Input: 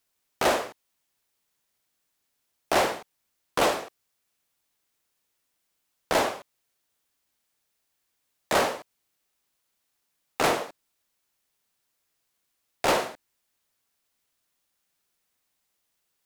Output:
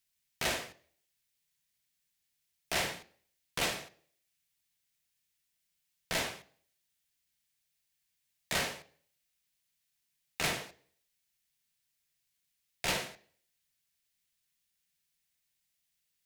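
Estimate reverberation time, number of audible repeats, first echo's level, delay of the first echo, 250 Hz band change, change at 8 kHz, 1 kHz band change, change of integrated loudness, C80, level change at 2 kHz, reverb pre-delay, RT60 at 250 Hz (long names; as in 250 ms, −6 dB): 0.55 s, no echo audible, no echo audible, no echo audible, −11.0 dB, −3.5 dB, −14.0 dB, −8.5 dB, 22.5 dB, −5.5 dB, 3 ms, 0.50 s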